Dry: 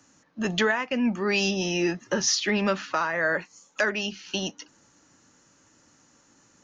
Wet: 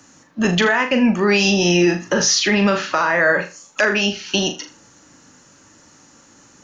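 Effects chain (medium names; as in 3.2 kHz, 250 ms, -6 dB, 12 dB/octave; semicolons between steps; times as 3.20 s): on a send: flutter echo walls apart 6.8 m, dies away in 0.3 s; on the sum: loudness maximiser +16 dB; trim -6 dB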